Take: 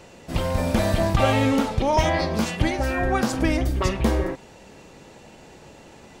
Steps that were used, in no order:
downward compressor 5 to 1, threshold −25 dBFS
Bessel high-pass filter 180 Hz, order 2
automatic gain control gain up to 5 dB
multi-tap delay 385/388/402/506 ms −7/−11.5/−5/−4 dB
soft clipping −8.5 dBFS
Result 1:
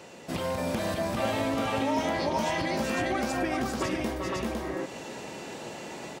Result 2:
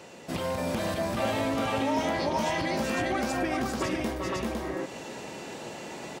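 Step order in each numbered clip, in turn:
soft clipping, then automatic gain control, then multi-tap delay, then downward compressor, then Bessel high-pass filter
multi-tap delay, then soft clipping, then automatic gain control, then downward compressor, then Bessel high-pass filter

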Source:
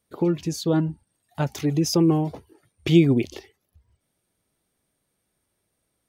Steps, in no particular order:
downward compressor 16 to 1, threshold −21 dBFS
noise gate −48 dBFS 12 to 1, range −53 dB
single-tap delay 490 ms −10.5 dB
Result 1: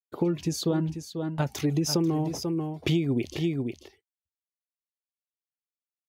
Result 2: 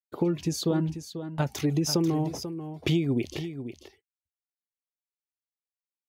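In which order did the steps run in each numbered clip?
noise gate, then single-tap delay, then downward compressor
noise gate, then downward compressor, then single-tap delay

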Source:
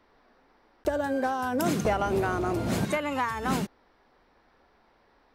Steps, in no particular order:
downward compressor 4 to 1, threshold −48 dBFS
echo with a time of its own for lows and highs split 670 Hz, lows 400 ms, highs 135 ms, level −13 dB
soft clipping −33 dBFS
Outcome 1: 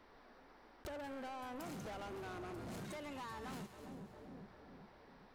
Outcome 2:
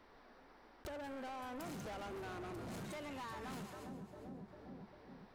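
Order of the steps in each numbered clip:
soft clipping, then echo with a time of its own for lows and highs, then downward compressor
echo with a time of its own for lows and highs, then soft clipping, then downward compressor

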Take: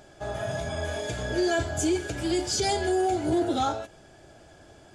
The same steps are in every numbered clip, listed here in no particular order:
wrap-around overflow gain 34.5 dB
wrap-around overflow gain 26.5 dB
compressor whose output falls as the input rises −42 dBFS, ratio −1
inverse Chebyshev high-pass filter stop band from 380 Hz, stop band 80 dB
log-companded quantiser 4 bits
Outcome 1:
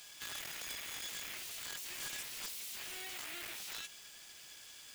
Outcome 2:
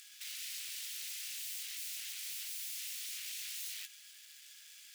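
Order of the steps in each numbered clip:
second wrap-around overflow, then inverse Chebyshev high-pass filter, then compressor whose output falls as the input rises, then log-companded quantiser, then first wrap-around overflow
second wrap-around overflow, then first wrap-around overflow, then log-companded quantiser, then compressor whose output falls as the input rises, then inverse Chebyshev high-pass filter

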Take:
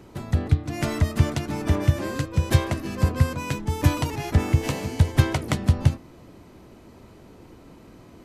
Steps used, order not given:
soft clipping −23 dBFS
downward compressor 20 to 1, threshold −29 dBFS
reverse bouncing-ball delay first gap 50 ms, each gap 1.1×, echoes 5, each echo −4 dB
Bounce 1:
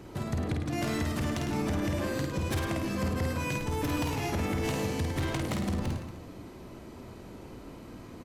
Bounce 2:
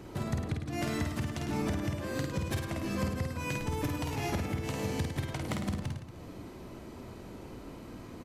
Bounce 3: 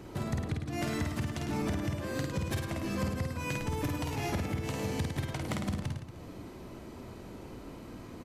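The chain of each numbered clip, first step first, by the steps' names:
soft clipping, then downward compressor, then reverse bouncing-ball delay
downward compressor, then soft clipping, then reverse bouncing-ball delay
downward compressor, then reverse bouncing-ball delay, then soft clipping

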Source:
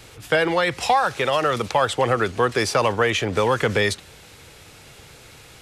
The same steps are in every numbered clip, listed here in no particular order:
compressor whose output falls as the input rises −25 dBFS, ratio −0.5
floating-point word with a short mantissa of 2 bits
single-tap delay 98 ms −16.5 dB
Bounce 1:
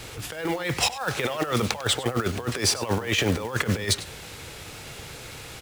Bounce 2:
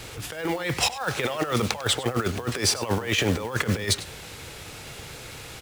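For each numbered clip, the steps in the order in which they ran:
compressor whose output falls as the input rises, then floating-point word with a short mantissa, then single-tap delay
floating-point word with a short mantissa, then compressor whose output falls as the input rises, then single-tap delay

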